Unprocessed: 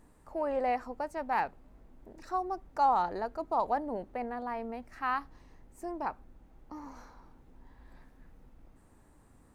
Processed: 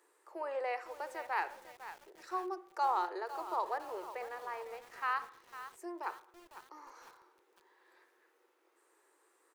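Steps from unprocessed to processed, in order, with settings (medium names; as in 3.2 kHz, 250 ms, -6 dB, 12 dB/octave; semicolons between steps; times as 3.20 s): Chebyshev high-pass 350 Hz, order 6; peaking EQ 670 Hz -9.5 dB 0.78 oct; speakerphone echo 220 ms, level -29 dB; on a send at -14 dB: reverberation RT60 0.50 s, pre-delay 50 ms; on the sum: bit-crushed delay 503 ms, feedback 55%, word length 8-bit, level -12 dB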